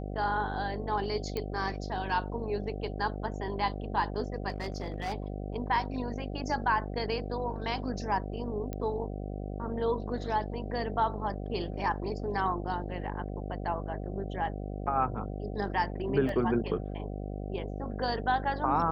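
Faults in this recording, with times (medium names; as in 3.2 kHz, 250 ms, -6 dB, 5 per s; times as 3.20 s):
buzz 50 Hz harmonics 15 -37 dBFS
1.37 s: pop -20 dBFS
4.49–5.14 s: clipped -29 dBFS
8.73 s: pop -23 dBFS
16.29 s: dropout 2.3 ms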